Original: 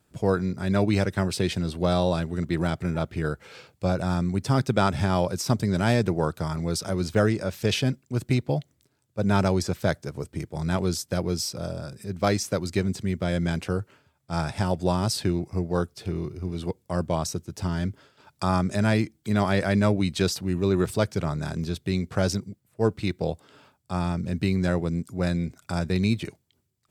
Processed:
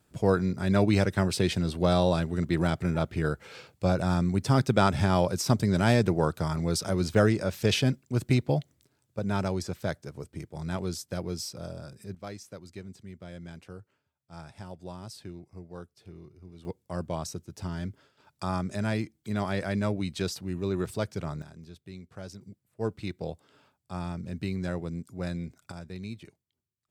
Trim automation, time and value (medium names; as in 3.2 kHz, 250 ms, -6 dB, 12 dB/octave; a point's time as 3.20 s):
-0.5 dB
from 9.19 s -7 dB
from 12.15 s -17.5 dB
from 16.65 s -7 dB
from 21.42 s -18 dB
from 22.41 s -8 dB
from 25.72 s -15.5 dB